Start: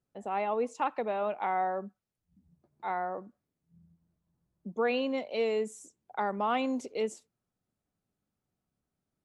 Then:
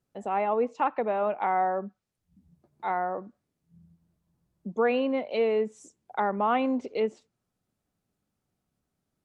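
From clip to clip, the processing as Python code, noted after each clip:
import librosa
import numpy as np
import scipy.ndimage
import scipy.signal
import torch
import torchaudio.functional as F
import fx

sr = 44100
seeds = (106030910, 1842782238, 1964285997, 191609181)

y = fx.env_lowpass_down(x, sr, base_hz=2300.0, full_db=-29.0)
y = y * librosa.db_to_amplitude(4.5)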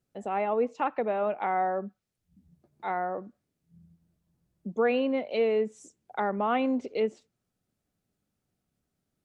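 y = fx.peak_eq(x, sr, hz=980.0, db=-4.5, octaves=0.65)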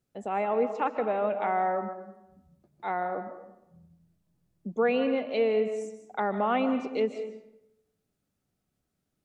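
y = fx.rev_freeverb(x, sr, rt60_s=0.87, hf_ratio=0.65, predelay_ms=105, drr_db=9.0)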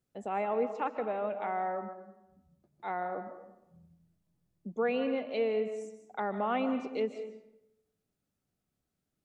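y = fx.rider(x, sr, range_db=10, speed_s=2.0)
y = y * librosa.db_to_amplitude(-5.5)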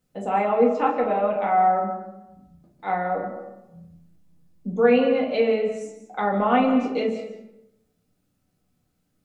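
y = fx.room_shoebox(x, sr, seeds[0], volume_m3=250.0, walls='furnished', distance_m=2.0)
y = y * librosa.db_to_amplitude(7.0)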